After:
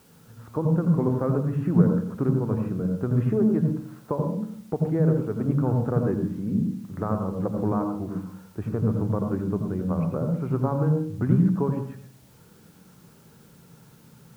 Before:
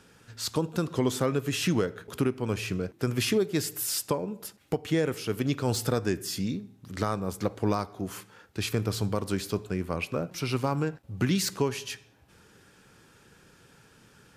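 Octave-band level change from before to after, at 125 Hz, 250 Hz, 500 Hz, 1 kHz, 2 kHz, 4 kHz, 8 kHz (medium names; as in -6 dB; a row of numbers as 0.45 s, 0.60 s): +8.0 dB, +6.5 dB, +2.0 dB, +0.5 dB, -10.5 dB, under -20 dB, under -20 dB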